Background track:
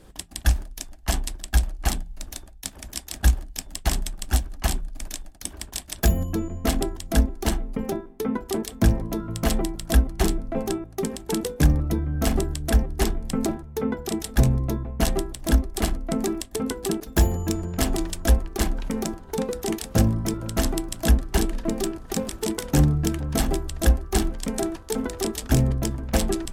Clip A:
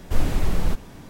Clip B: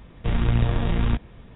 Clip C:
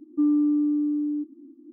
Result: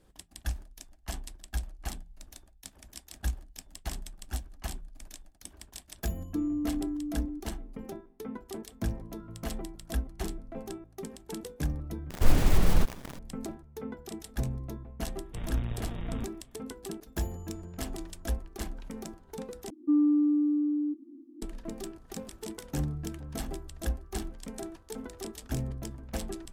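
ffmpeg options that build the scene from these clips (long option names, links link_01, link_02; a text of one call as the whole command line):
ffmpeg -i bed.wav -i cue0.wav -i cue1.wav -i cue2.wav -filter_complex "[3:a]asplit=2[link_01][link_02];[0:a]volume=-13.5dB[link_03];[1:a]acrusher=bits=7:dc=4:mix=0:aa=0.000001[link_04];[link_03]asplit=3[link_05][link_06][link_07];[link_05]atrim=end=12.104[link_08];[link_04]atrim=end=1.09,asetpts=PTS-STARTPTS,volume=-0.5dB[link_09];[link_06]atrim=start=13.186:end=19.704[link_10];[link_02]atrim=end=1.72,asetpts=PTS-STARTPTS,volume=-2.5dB[link_11];[link_07]atrim=start=21.416[link_12];[link_01]atrim=end=1.72,asetpts=PTS-STARTPTS,volume=-10dB,afade=type=in:duration=0.004:curve=hsin,afade=type=out:start_time=1.716:duration=0.004:curve=hsin,adelay=6160[link_13];[2:a]atrim=end=1.55,asetpts=PTS-STARTPTS,volume=-14.5dB,afade=type=in:duration=0.004:curve=hsin,afade=type=out:start_time=1.546:duration=0.004:curve=hsin,adelay=15090[link_14];[link_08][link_09]acrossfade=duration=0.004:curve1=hsin:curve2=hsin[link_15];[link_15][link_10]acrossfade=duration=0.004:curve1=hsin:curve2=hsin[link_16];[link_16][link_11]acrossfade=duration=0.004:curve1=hsin:curve2=hsin[link_17];[link_17][link_12]acrossfade=duration=0.004:curve1=hsin:curve2=hsin[link_18];[link_18][link_13][link_14]amix=inputs=3:normalize=0" out.wav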